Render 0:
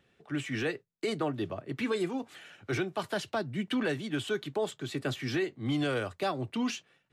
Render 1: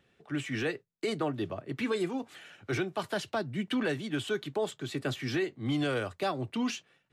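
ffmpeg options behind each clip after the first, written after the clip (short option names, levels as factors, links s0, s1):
-af anull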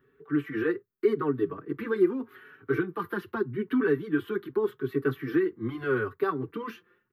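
-filter_complex "[0:a]firequalizer=gain_entry='entry(190,0);entry(420,11);entry(610,-17);entry(1100,6);entry(1600,4);entry(2400,-9);entry(7600,-28);entry(13000,6)':delay=0.05:min_phase=1,asplit=2[s0][s1];[s1]adelay=4.9,afreqshift=0.82[s2];[s0][s2]amix=inputs=2:normalize=1,volume=1.41"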